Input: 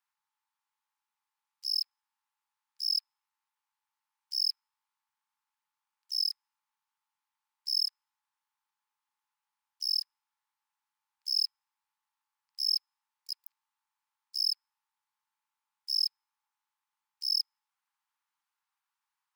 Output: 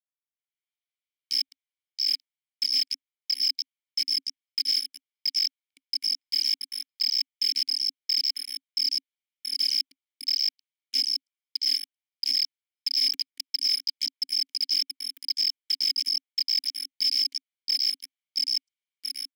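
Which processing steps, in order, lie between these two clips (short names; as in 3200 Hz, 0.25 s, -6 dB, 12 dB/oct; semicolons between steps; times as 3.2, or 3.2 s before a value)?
slices in reverse order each 0.109 s, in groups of 4; high shelf 7000 Hz +10 dB; on a send: delay with a stepping band-pass 0.677 s, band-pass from 4400 Hz, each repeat 0.7 oct, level -1.5 dB; on the sum: AGC gain up to 15 dB; sample leveller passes 5; vowel filter i; tilt +3 dB/oct; gain -2.5 dB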